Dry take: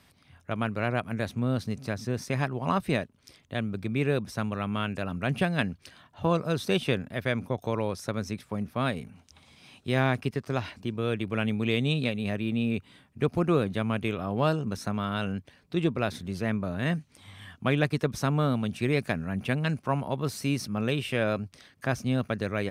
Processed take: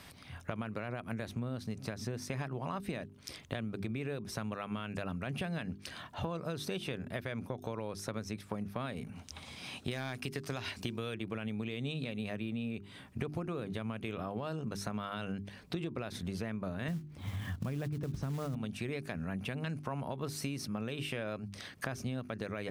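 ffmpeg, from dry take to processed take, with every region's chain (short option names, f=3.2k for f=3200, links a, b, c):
-filter_complex "[0:a]asettb=1/sr,asplit=3[a][b][c];[a]atrim=end=9.914[d];[b]atrim=start=9.91:end=11.15,asetpts=PTS-STARTPTS,afade=t=in:d=0.004:c=qsin,afade=t=out:st=1.236:d=0.004:c=qsin,highshelf=f=2.1k:g=10,asoftclip=type=hard:threshold=-13.5dB[e];[c]atrim=start=11.146[f];[d][e]acrossfade=d=0.004:c1=hsin:c2=qsin[g];[g][f]acrossfade=d=0.004:c1=qsin:c2=hsin,asettb=1/sr,asplit=3[h][i][j];[h]atrim=end=16.884[k];[i]atrim=start=16.88:end=18.55,asetpts=PTS-STARTPTS,afade=t=in:d=0.004:c=qsin,afade=t=out:st=1.666:d=0.004:c=qsin,highpass=59,aemphasis=mode=reproduction:type=riaa,acrusher=bits=6:mode=log:mix=0:aa=0.000001[l];[j]atrim=start=18.546[m];[k][l]acrossfade=d=0.004:c1=hsin:c2=qsin[n];[n][m]acrossfade=d=0.004:c1=qsin:c2=hsin,bandreject=f=50:t=h:w=6,bandreject=f=100:t=h:w=6,bandreject=f=150:t=h:w=6,bandreject=f=200:t=h:w=6,bandreject=f=250:t=h:w=6,bandreject=f=300:t=h:w=6,bandreject=f=350:t=h:w=6,bandreject=f=400:t=h:w=6,alimiter=limit=-20dB:level=0:latency=1:release=96,acompressor=threshold=-43dB:ratio=8,volume=8dB"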